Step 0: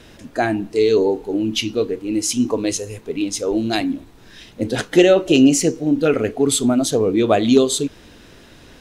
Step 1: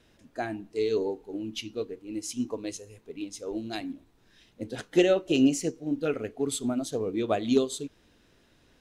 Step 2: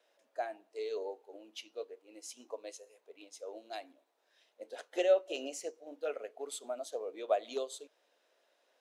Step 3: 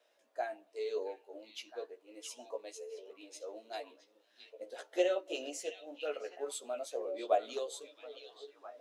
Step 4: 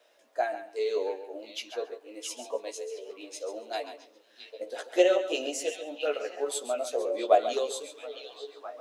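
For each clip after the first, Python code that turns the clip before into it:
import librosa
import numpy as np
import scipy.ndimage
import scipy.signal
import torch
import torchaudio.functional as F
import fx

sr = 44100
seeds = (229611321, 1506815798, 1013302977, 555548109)

y1 = fx.upward_expand(x, sr, threshold_db=-26.0, expansion=1.5)
y1 = y1 * librosa.db_to_amplitude(-8.5)
y2 = fx.ladder_highpass(y1, sr, hz=510.0, resonance_pct=55)
y3 = fx.echo_stepped(y2, sr, ms=667, hz=3200.0, octaves=-1.4, feedback_pct=70, wet_db=-6.0)
y3 = fx.chorus_voices(y3, sr, voices=6, hz=0.25, base_ms=15, depth_ms=1.9, mix_pct=40)
y3 = y3 * librosa.db_to_amplitude(3.0)
y4 = fx.echo_feedback(y3, sr, ms=137, feedback_pct=17, wet_db=-11.0)
y4 = y4 * librosa.db_to_amplitude(8.5)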